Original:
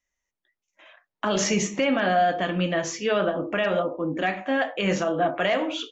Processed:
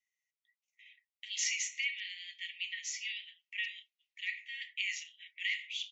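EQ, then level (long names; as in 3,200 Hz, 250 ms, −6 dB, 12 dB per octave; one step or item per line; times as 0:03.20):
Chebyshev high-pass filter 1,900 Hz, order 10
spectral tilt −3 dB per octave
dynamic equaliser 6,800 Hz, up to +4 dB, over −53 dBFS, Q 2.2
0.0 dB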